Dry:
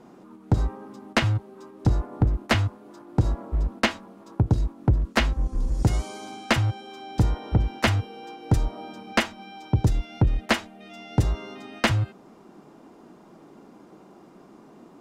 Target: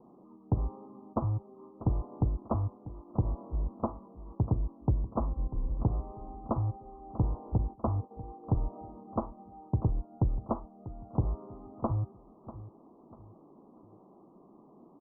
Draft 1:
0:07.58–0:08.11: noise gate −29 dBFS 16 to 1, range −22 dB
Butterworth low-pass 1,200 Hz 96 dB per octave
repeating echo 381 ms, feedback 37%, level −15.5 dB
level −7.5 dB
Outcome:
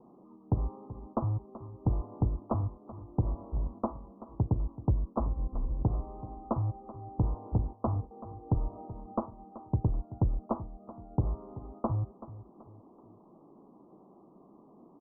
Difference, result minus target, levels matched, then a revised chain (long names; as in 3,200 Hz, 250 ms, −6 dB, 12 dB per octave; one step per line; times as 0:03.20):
echo 262 ms early
0:07.58–0:08.11: noise gate −29 dBFS 16 to 1, range −22 dB
Butterworth low-pass 1,200 Hz 96 dB per octave
repeating echo 643 ms, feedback 37%, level −15.5 dB
level −7.5 dB